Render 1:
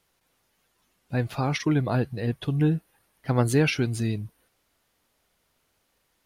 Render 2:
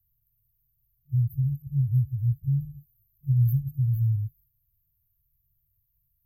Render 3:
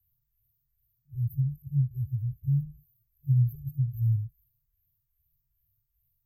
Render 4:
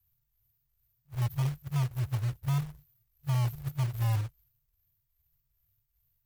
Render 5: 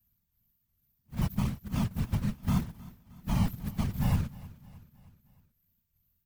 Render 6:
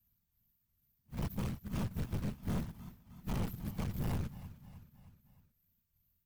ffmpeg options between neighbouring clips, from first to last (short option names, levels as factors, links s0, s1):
-filter_complex "[0:a]afftfilt=real='re*(1-between(b*sr/4096,140,12000))':imag='im*(1-between(b*sr/4096,140,12000))':win_size=4096:overlap=0.75,acrossover=split=130|3000[s0][s1][s2];[s1]acompressor=threshold=0.0224:ratio=6[s3];[s0][s3][s2]amix=inputs=3:normalize=0,volume=2"
-filter_complex "[0:a]asplit=2[s0][s1];[s1]afreqshift=2.5[s2];[s0][s2]amix=inputs=2:normalize=1"
-af "alimiter=limit=0.0708:level=0:latency=1:release=23,acrusher=bits=3:mode=log:mix=0:aa=0.000001"
-af "afftfilt=real='hypot(re,im)*cos(2*PI*random(0))':imag='hypot(re,im)*sin(2*PI*random(1))':win_size=512:overlap=0.75,aecho=1:1:311|622|933|1244:0.1|0.053|0.0281|0.0149,volume=2.11"
-af "aeval=exprs='(tanh(35.5*val(0)+0.45)-tanh(0.45))/35.5':c=same,volume=0.891"